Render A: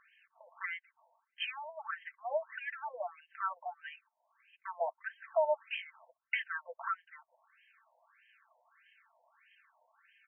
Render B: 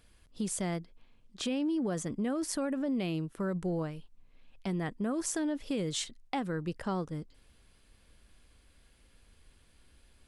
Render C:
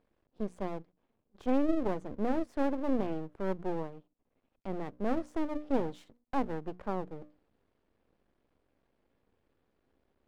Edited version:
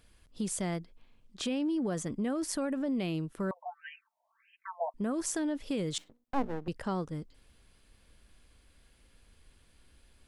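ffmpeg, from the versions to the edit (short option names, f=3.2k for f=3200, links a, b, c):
-filter_complex "[1:a]asplit=3[a][b][c];[a]atrim=end=3.512[d];[0:a]atrim=start=3.508:end=4.942[e];[b]atrim=start=4.938:end=5.982[f];[2:a]atrim=start=5.978:end=6.682[g];[c]atrim=start=6.678[h];[d][e]acrossfade=d=0.004:c1=hsin:c2=hsin[i];[i][f]acrossfade=d=0.004:c1=hsin:c2=hsin[j];[j][g]acrossfade=d=0.004:c1=hsin:c2=hsin[k];[k][h]acrossfade=d=0.004:c1=hsin:c2=hsin"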